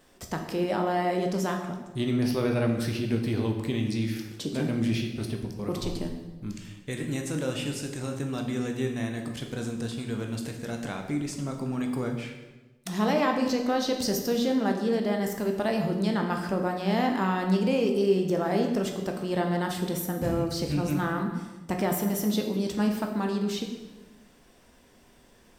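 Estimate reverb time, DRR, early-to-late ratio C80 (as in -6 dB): 1.2 s, 2.5 dB, 8.0 dB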